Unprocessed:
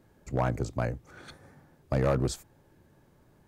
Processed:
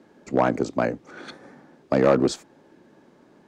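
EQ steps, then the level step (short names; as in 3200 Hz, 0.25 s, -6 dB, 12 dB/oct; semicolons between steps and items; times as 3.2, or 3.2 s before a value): three-band isolator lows -22 dB, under 230 Hz, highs -20 dB, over 7300 Hz; bell 220 Hz +8 dB 1.4 oct; +8.0 dB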